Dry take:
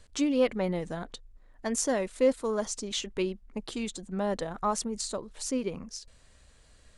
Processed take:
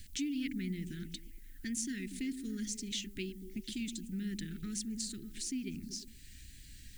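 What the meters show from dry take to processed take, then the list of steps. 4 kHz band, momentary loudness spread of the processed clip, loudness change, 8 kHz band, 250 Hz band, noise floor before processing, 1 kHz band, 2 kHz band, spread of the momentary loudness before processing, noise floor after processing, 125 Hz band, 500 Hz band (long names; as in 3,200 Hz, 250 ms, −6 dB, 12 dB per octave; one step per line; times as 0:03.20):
−4.5 dB, 13 LU, −8.5 dB, −5.5 dB, −5.5 dB, −59 dBFS, below −30 dB, −7.0 dB, 13 LU, −53 dBFS, −3.5 dB, −22.5 dB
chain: inverse Chebyshev band-stop filter 530–1,100 Hz, stop band 50 dB
downward compressor 2 to 1, threshold −53 dBFS, peak gain reduction 15.5 dB
background noise violet −70 dBFS
tape wow and flutter 23 cents
on a send: echo through a band-pass that steps 119 ms, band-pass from 200 Hz, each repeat 0.7 octaves, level −6.5 dB
on the sum: level +6.5 dB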